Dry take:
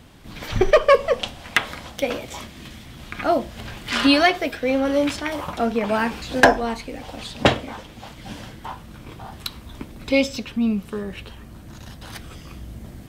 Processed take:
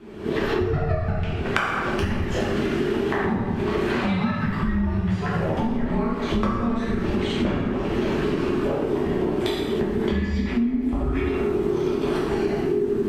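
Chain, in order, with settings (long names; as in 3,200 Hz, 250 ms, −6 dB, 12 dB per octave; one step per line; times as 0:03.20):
camcorder AGC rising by 44 dB per second
frequency shifter −470 Hz
low-pass filter 1,200 Hz 6 dB per octave
dense smooth reverb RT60 1.2 s, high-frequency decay 0.7×, DRR −6.5 dB
downward compressor 6 to 1, threshold −21 dBFS, peak gain reduction 17.5 dB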